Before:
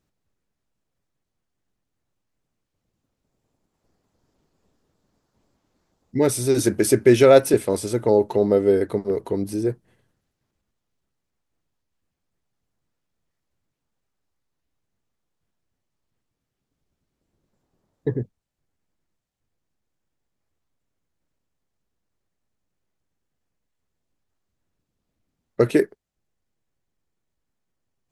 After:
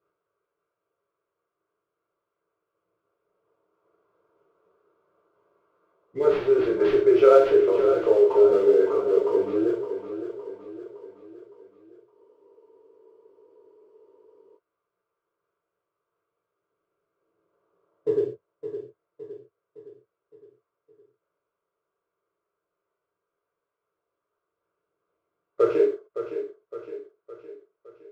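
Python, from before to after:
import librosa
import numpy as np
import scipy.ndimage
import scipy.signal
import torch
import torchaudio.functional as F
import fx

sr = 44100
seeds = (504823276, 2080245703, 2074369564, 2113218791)

p1 = scipy.signal.sosfilt(scipy.signal.butter(2, 380.0, 'highpass', fs=sr, output='sos'), x)
p2 = fx.high_shelf_res(p1, sr, hz=2200.0, db=-11.5, q=1.5)
p3 = fx.over_compress(p2, sr, threshold_db=-28.0, ratio=-1.0)
p4 = p2 + (p3 * librosa.db_to_amplitude(0.0))
p5 = fx.fixed_phaser(p4, sr, hz=1200.0, stages=8)
p6 = fx.sample_hold(p5, sr, seeds[0], rate_hz=8100.0, jitter_pct=20)
p7 = fx.air_absorb(p6, sr, metres=300.0)
p8 = p7 + fx.echo_feedback(p7, sr, ms=563, feedback_pct=50, wet_db=-10.5, dry=0)
p9 = fx.rev_gated(p8, sr, seeds[1], gate_ms=160, shape='falling', drr_db=-4.5)
p10 = fx.spec_freeze(p9, sr, seeds[2], at_s=12.16, hold_s=2.42)
y = p10 * librosa.db_to_amplitude(-5.5)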